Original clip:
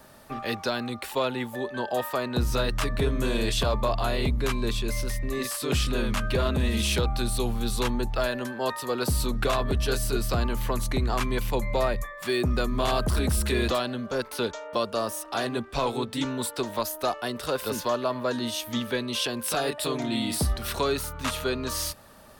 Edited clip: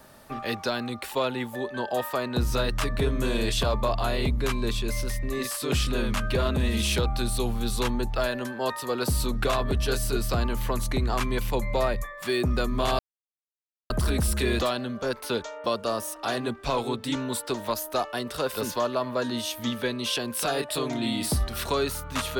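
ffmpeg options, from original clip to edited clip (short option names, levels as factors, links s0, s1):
-filter_complex "[0:a]asplit=2[s0][s1];[s0]atrim=end=12.99,asetpts=PTS-STARTPTS,afade=t=out:st=12.986:d=0.004:c=hsin,apad=pad_dur=0.91[s2];[s1]atrim=start=12.99,asetpts=PTS-STARTPTS,afade=t=in:d=0.004:c=hsin[s3];[s2][s3]concat=n=2:v=0:a=1"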